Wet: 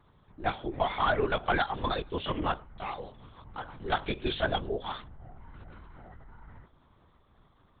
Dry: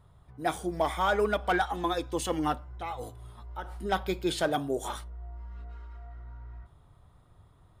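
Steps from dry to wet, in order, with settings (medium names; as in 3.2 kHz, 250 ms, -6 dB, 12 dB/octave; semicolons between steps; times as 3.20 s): tilt EQ +1.5 dB/octave; LPC vocoder at 8 kHz whisper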